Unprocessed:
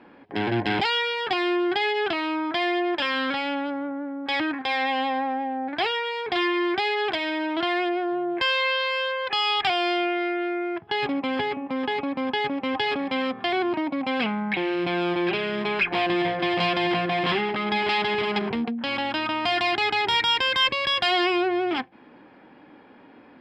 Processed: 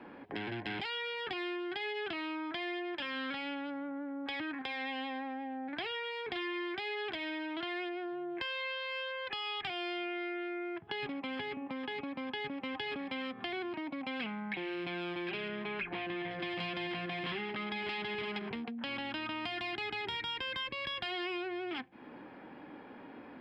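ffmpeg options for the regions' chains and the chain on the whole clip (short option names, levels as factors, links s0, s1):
-filter_complex "[0:a]asettb=1/sr,asplit=3[s0][s1][s2];[s0]atrim=end=15.484[s3];[s1]atrim=start=15.48:end=16.31,asetpts=PTS-STARTPTS,afade=t=in:d=0.004:c=qsin,afade=t=out:st=0.826:d=0.004:c=qsin,acrossover=split=3900[s4][s5];[s5]acompressor=threshold=0.002:ratio=4:attack=1:release=60[s6];[s4][s6]amix=inputs=2:normalize=0,highshelf=f=6600:g=-10.5[s7];[s2]atrim=start=16.306[s8];[s3][s7]acrossfade=d=0.004:c1=hsin:c2=qsin[s9];[s9][s8]acrossfade=d=0.004:c1=qsin:c2=hsin,acompressor=threshold=0.0141:ratio=2,equalizer=f=6200:w=0.93:g=-6,acrossover=split=410|1500|4000[s10][s11][s12][s13];[s10]acompressor=threshold=0.00891:ratio=4[s14];[s11]acompressor=threshold=0.00398:ratio=4[s15];[s12]acompressor=threshold=0.0126:ratio=4[s16];[s13]acompressor=threshold=0.002:ratio=4[s17];[s14][s15][s16][s17]amix=inputs=4:normalize=0"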